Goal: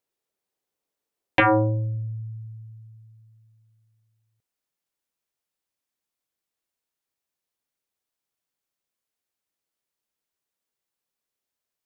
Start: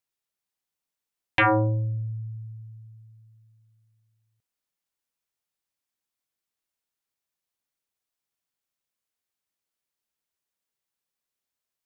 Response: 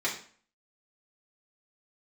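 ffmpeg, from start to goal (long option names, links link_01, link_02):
-af "asetnsamples=nb_out_samples=441:pad=0,asendcmd='1.4 equalizer g 3.5',equalizer=frequency=430:width_type=o:width=1.7:gain=12"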